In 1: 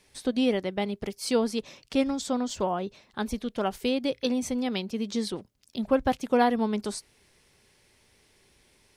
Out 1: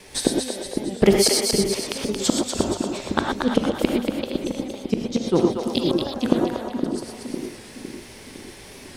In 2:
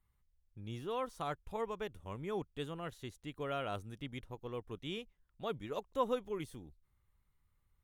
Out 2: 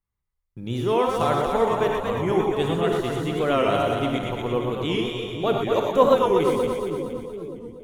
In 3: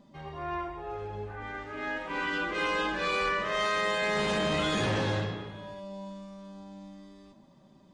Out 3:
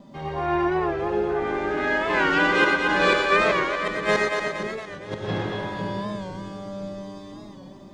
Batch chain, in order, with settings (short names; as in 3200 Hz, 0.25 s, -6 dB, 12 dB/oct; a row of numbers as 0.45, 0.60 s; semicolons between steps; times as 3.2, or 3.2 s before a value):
flipped gate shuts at -21 dBFS, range -31 dB; bell 440 Hz +3.5 dB 2.4 oct; notches 50/100 Hz; non-linear reverb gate 0.14 s rising, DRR 1.5 dB; gate with hold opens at -60 dBFS; split-band echo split 430 Hz, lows 0.508 s, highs 0.233 s, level -4.5 dB; record warp 45 rpm, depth 100 cents; match loudness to -23 LUFS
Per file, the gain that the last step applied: +15.5, +12.5, +7.0 dB